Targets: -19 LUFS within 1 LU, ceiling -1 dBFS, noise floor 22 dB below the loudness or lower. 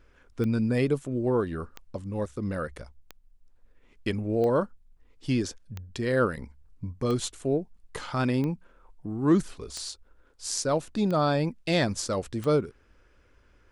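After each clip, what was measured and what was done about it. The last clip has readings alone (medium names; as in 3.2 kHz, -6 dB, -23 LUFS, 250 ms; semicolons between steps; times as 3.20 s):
clicks found 10; loudness -28.5 LUFS; peak level -11.0 dBFS; loudness target -19.0 LUFS
-> de-click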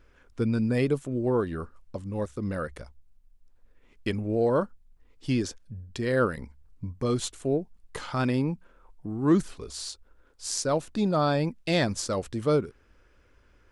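clicks found 0; loudness -28.5 LUFS; peak level -11.0 dBFS; loudness target -19.0 LUFS
-> trim +9.5 dB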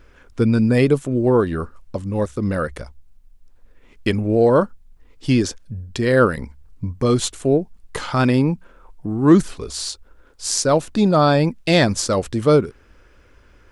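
loudness -19.0 LUFS; peak level -1.5 dBFS; noise floor -51 dBFS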